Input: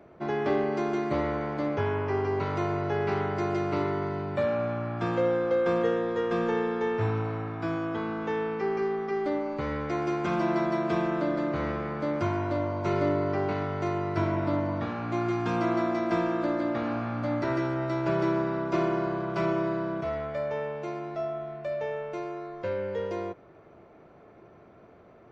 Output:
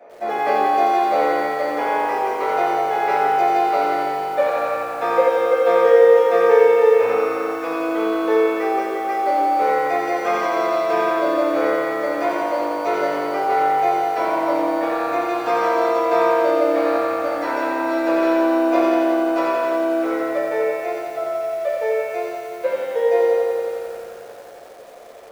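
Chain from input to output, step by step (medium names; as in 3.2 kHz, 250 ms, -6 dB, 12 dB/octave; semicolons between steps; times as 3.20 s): resonant high-pass 530 Hz, resonance Q 4.9; reverberation RT60 1.0 s, pre-delay 3 ms, DRR -7.5 dB; bit-crushed delay 88 ms, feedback 80%, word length 8-bit, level -3 dB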